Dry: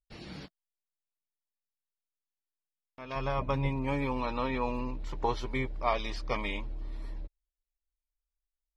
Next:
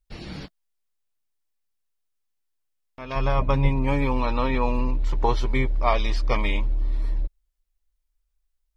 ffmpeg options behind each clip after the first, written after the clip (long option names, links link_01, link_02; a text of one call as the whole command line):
ffmpeg -i in.wav -af "lowshelf=frequency=61:gain=11.5,volume=6.5dB" out.wav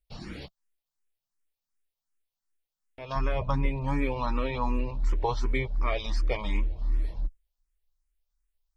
ffmpeg -i in.wav -filter_complex "[0:a]asplit=2[link_01][link_02];[link_02]alimiter=limit=-17dB:level=0:latency=1:release=475,volume=0dB[link_03];[link_01][link_03]amix=inputs=2:normalize=0,asplit=2[link_04][link_05];[link_05]afreqshift=2.7[link_06];[link_04][link_06]amix=inputs=2:normalize=1,volume=-6.5dB" out.wav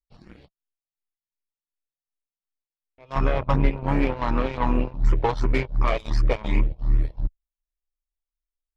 ffmpeg -i in.wav -af "aeval=exprs='0.188*(cos(1*acos(clip(val(0)/0.188,-1,1)))-cos(1*PI/2))+0.0237*(cos(7*acos(clip(val(0)/0.188,-1,1)))-cos(7*PI/2))':channel_layout=same,highshelf=frequency=3100:gain=-11,volume=6.5dB" out.wav